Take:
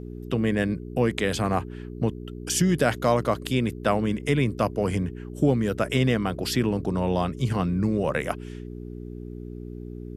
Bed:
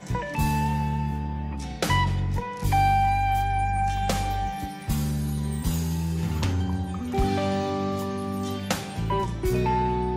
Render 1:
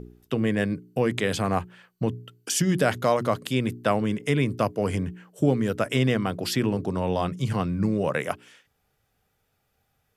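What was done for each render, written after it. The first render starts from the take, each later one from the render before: de-hum 60 Hz, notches 7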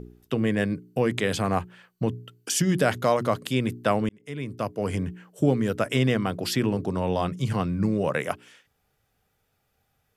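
4.09–5.06 s: fade in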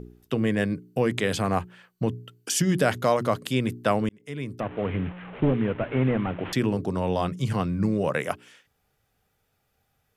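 4.60–6.53 s: one-bit delta coder 16 kbps, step -34.5 dBFS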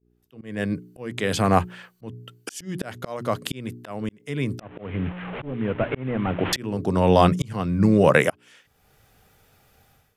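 level rider gain up to 14 dB; slow attack 693 ms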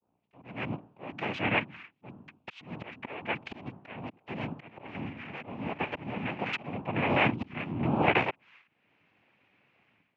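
noise-vocoded speech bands 4; four-pole ladder low-pass 2.9 kHz, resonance 55%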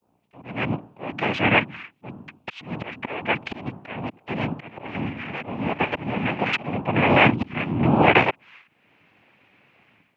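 trim +9.5 dB; peak limiter -3 dBFS, peak gain reduction 2 dB

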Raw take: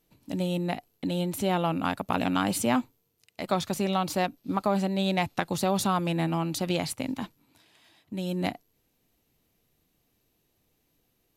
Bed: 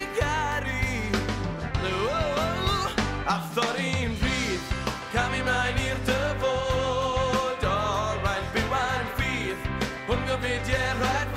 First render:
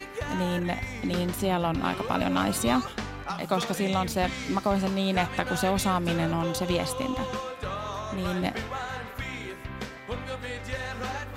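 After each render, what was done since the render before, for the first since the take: add bed -8 dB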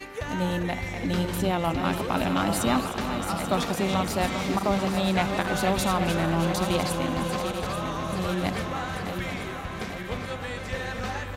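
backward echo that repeats 418 ms, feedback 78%, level -8 dB; delay 308 ms -13 dB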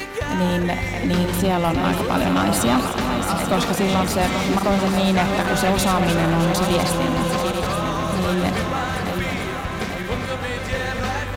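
waveshaping leveller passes 2; upward compressor, threshold -25 dBFS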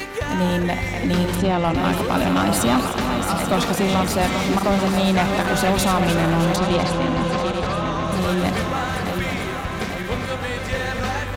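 1.35–1.75 s: distance through air 63 m; 6.56–8.12 s: distance through air 75 m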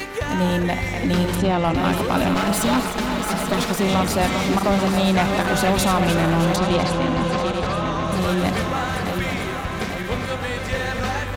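2.34–3.85 s: comb filter that takes the minimum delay 4.7 ms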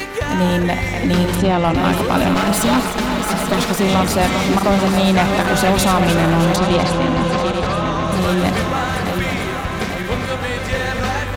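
trim +4 dB

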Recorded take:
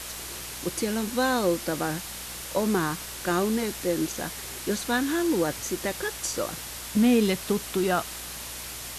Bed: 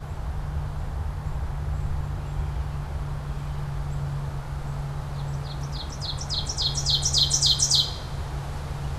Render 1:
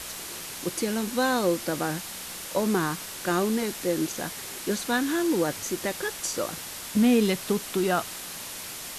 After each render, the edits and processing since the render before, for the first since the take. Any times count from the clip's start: de-hum 60 Hz, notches 2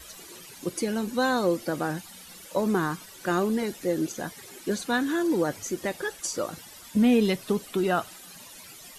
noise reduction 14 dB, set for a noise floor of -38 dBFS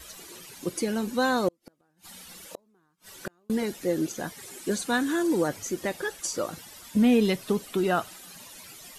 1.48–3.50 s: inverted gate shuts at -22 dBFS, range -41 dB; 4.40–5.48 s: peaking EQ 8.5 kHz +5.5 dB 0.71 oct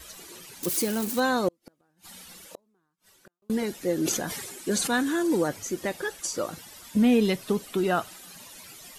0.63–1.20 s: zero-crossing glitches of -23.5 dBFS; 2.20–3.42 s: fade out; 3.96–5.40 s: decay stretcher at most 36 dB/s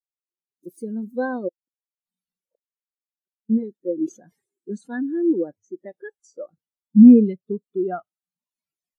level rider gain up to 14.5 dB; spectral contrast expander 2.5:1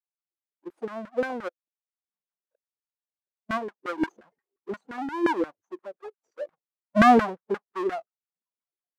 square wave that keeps the level; LFO band-pass saw down 5.7 Hz 340–1600 Hz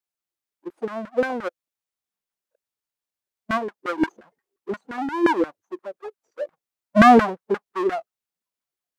trim +5 dB; peak limiter -2 dBFS, peak gain reduction 1.5 dB

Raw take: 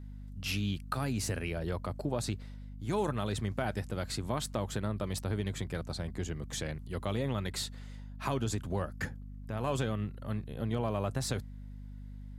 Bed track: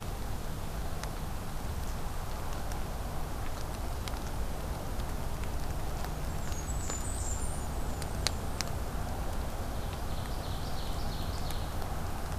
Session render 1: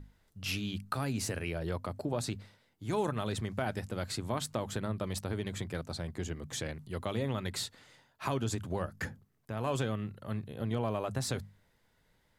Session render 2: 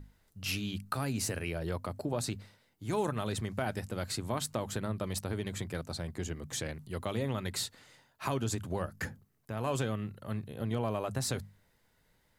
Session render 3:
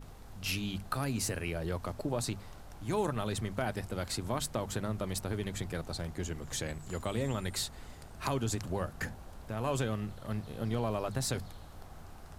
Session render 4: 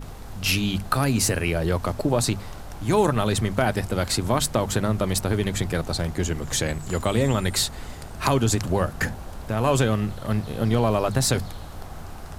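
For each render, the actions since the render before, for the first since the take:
hum notches 50/100/150/200/250 Hz
treble shelf 8.3 kHz +6 dB; band-stop 3.4 kHz, Q 28
add bed track -14 dB
trim +12 dB

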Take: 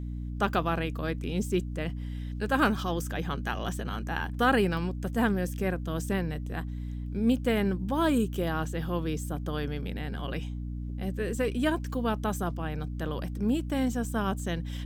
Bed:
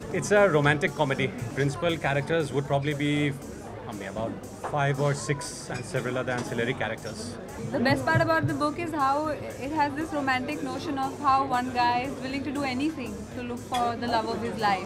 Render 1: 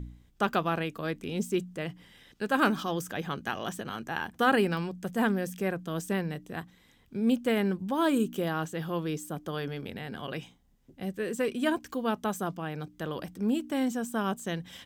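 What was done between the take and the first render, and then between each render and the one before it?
de-hum 60 Hz, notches 5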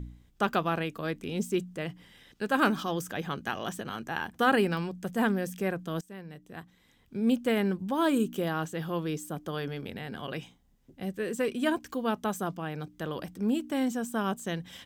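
6.01–7.25 s: fade in, from -21 dB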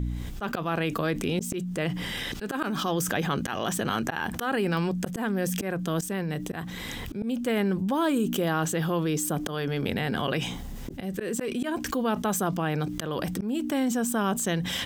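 slow attack 389 ms; level flattener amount 70%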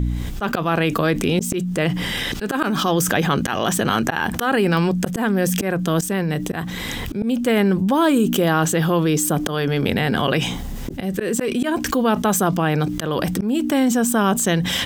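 trim +8.5 dB; peak limiter -2 dBFS, peak gain reduction 3 dB

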